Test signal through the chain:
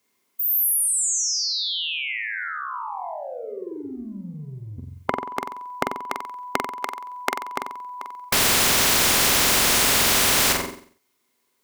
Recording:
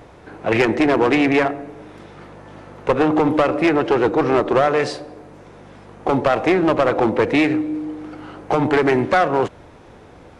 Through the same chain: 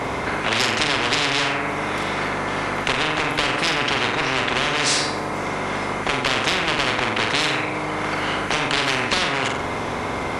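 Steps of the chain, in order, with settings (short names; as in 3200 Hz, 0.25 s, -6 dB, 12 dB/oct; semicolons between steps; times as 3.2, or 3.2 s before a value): HPF 120 Hz 6 dB/oct; compressor 2:1, threshold -26 dBFS; small resonant body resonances 260/390/1000/2100 Hz, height 13 dB, ringing for 45 ms; on a send: flutter echo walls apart 7.8 m, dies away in 0.5 s; on the sum: spectral compressor 10:1; gain -3.5 dB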